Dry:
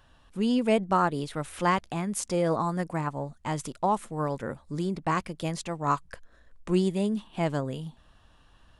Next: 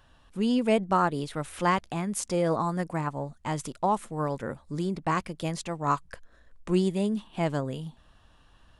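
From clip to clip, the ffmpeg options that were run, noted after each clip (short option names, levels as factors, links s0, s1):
-af anull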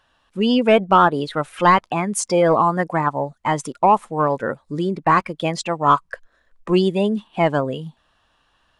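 -filter_complex "[0:a]asplit=2[s0][s1];[s1]highpass=f=720:p=1,volume=4.47,asoftclip=type=tanh:threshold=0.299[s2];[s0][s2]amix=inputs=2:normalize=0,lowpass=f=5700:p=1,volume=0.501,afftdn=nr=14:nf=-33,volume=2.37"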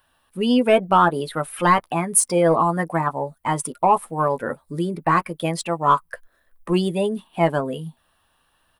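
-filter_complex "[0:a]acrossover=split=2200[s0][s1];[s0]asplit=2[s2][s3];[s3]adelay=12,volume=0.473[s4];[s2][s4]amix=inputs=2:normalize=0[s5];[s1]aexciter=amount=8:drive=6.3:freq=9300[s6];[s5][s6]amix=inputs=2:normalize=0,volume=0.708"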